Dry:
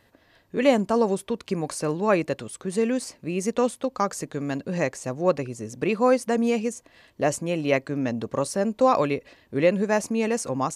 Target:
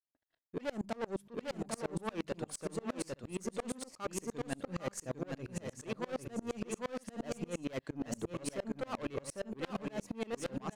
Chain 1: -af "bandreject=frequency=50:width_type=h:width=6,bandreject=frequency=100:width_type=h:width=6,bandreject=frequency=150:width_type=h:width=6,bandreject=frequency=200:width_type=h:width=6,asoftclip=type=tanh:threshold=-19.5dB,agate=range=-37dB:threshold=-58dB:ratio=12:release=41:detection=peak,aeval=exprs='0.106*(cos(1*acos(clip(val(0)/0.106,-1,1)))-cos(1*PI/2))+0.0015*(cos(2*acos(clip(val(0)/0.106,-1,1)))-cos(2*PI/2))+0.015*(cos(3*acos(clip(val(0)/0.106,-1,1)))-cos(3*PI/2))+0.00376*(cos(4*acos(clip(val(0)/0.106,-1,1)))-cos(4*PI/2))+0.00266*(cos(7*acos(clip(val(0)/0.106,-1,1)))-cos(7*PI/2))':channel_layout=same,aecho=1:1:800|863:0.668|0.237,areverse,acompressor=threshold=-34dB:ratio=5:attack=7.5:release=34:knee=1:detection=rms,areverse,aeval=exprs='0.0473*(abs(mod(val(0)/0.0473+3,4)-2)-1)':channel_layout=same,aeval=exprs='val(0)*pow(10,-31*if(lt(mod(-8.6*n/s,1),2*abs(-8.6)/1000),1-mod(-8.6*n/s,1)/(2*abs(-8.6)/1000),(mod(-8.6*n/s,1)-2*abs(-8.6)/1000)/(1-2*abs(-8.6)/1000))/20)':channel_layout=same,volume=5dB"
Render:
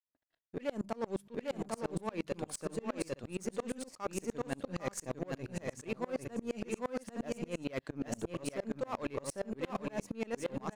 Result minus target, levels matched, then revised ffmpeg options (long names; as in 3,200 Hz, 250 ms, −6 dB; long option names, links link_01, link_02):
soft clipping: distortion −5 dB
-af "bandreject=frequency=50:width_type=h:width=6,bandreject=frequency=100:width_type=h:width=6,bandreject=frequency=150:width_type=h:width=6,bandreject=frequency=200:width_type=h:width=6,asoftclip=type=tanh:threshold=-27.5dB,agate=range=-37dB:threshold=-58dB:ratio=12:release=41:detection=peak,aeval=exprs='0.106*(cos(1*acos(clip(val(0)/0.106,-1,1)))-cos(1*PI/2))+0.0015*(cos(2*acos(clip(val(0)/0.106,-1,1)))-cos(2*PI/2))+0.015*(cos(3*acos(clip(val(0)/0.106,-1,1)))-cos(3*PI/2))+0.00376*(cos(4*acos(clip(val(0)/0.106,-1,1)))-cos(4*PI/2))+0.00266*(cos(7*acos(clip(val(0)/0.106,-1,1)))-cos(7*PI/2))':channel_layout=same,aecho=1:1:800|863:0.668|0.237,areverse,acompressor=threshold=-34dB:ratio=5:attack=7.5:release=34:knee=1:detection=rms,areverse,aeval=exprs='0.0473*(abs(mod(val(0)/0.0473+3,4)-2)-1)':channel_layout=same,aeval=exprs='val(0)*pow(10,-31*if(lt(mod(-8.6*n/s,1),2*abs(-8.6)/1000),1-mod(-8.6*n/s,1)/(2*abs(-8.6)/1000),(mod(-8.6*n/s,1)-2*abs(-8.6)/1000)/(1-2*abs(-8.6)/1000))/20)':channel_layout=same,volume=5dB"